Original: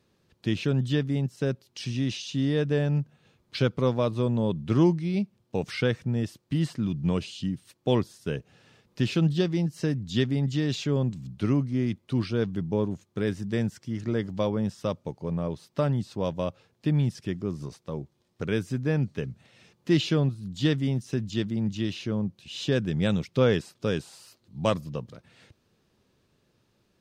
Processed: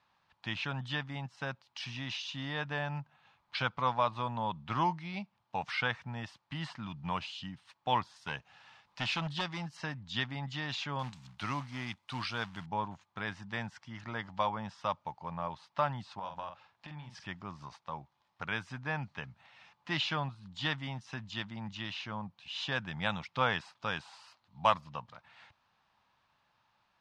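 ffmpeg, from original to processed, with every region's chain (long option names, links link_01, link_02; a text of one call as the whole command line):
ffmpeg -i in.wav -filter_complex "[0:a]asettb=1/sr,asplit=3[link_01][link_02][link_03];[link_01]atrim=end=8.164[link_04];[link_02]atrim=start=8.16:end=9.77,asetpts=PTS-STARTPTS,afade=type=in:duration=0.004:curve=qsin,afade=type=out:start_time=1.606:duration=0.004:curve=qsin,highshelf=frequency=3600:gain=7,asoftclip=type=hard:threshold=-19dB[link_05];[link_03]atrim=start=9.766[link_06];[link_04][link_05]acrossfade=duration=0.004:curve1=hsin:curve2=qsin[link_07];[link_07][link_06]acrossfade=duration=0.004:curve1=qsin:curve2=hsin,asettb=1/sr,asplit=3[link_08][link_09][link_10];[link_08]atrim=end=10.994[link_11];[link_09]atrim=start=10.99:end=12.66,asetpts=PTS-STARTPTS,afade=type=in:duration=0.004:curve=qsin,afade=type=out:start_time=1.666:duration=0.004:curve=qsin,aemphasis=mode=production:type=75fm,acrusher=bits=6:mode=log:mix=0:aa=0.000001[link_12];[link_10]atrim=start=12.656[link_13];[link_11][link_12]acrossfade=duration=0.004:curve1=hsin:curve2=qsin[link_14];[link_14][link_13]acrossfade=duration=0.004:curve1=qsin:curve2=hsin,asettb=1/sr,asplit=3[link_15][link_16][link_17];[link_15]atrim=end=16.194[link_18];[link_16]atrim=start=16.19:end=17.27,asetpts=PTS-STARTPTS,afade=type=in:duration=0.004:curve=qsin,afade=type=out:start_time=1.076:duration=0.004:curve=qsin,acompressor=threshold=-33dB:ratio=5:attack=3.2:release=140:knee=1:detection=peak,asplit=2[link_19][link_20];[link_20]adelay=47,volume=-6.5dB[link_21];[link_19][link_21]amix=inputs=2:normalize=0,atrim=end_sample=47628[link_22];[link_17]atrim=start=17.266[link_23];[link_18][link_22]acrossfade=duration=0.004:curve1=hsin:curve2=qsin[link_24];[link_24][link_23]acrossfade=duration=0.004:curve1=qsin:curve2=hsin,lowpass=3700,lowshelf=frequency=600:width_type=q:width=3:gain=-13" out.wav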